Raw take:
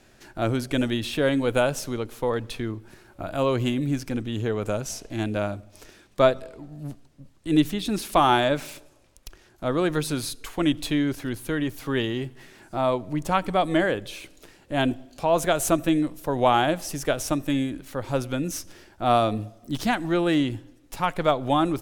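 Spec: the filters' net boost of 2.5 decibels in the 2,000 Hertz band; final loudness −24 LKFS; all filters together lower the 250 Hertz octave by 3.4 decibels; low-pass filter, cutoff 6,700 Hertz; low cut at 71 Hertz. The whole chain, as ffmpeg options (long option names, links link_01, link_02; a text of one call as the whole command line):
ffmpeg -i in.wav -af "highpass=71,lowpass=6700,equalizer=frequency=250:width_type=o:gain=-4.5,equalizer=frequency=2000:width_type=o:gain=3.5,volume=2dB" out.wav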